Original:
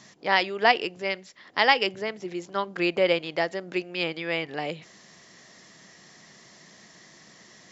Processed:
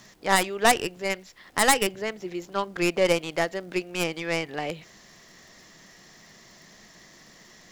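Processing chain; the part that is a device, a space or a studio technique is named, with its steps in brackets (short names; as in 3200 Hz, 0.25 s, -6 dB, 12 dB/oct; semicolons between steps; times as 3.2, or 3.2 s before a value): record under a worn stylus (tracing distortion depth 0.25 ms; crackle; pink noise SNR 36 dB)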